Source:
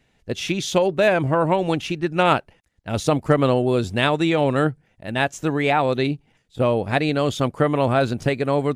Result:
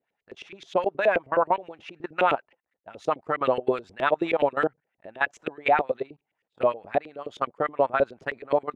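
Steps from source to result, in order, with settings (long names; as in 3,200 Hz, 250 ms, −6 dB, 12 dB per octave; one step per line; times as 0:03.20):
output level in coarse steps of 19 dB
auto-filter band-pass saw up 9.5 Hz 380–2,500 Hz
level +5 dB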